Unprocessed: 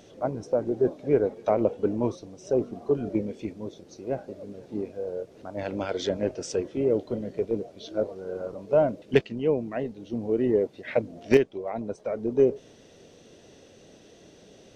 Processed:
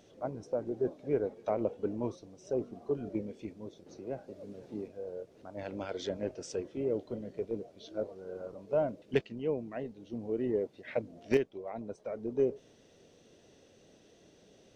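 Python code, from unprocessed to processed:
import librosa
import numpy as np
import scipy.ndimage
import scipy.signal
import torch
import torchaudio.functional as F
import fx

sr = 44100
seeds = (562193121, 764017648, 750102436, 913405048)

y = fx.band_squash(x, sr, depth_pct=40, at=(3.86, 4.88))
y = y * librosa.db_to_amplitude(-8.5)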